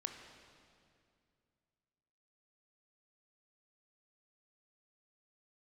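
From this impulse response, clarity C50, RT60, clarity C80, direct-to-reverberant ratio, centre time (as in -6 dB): 5.5 dB, 2.4 s, 6.5 dB, 4.5 dB, 48 ms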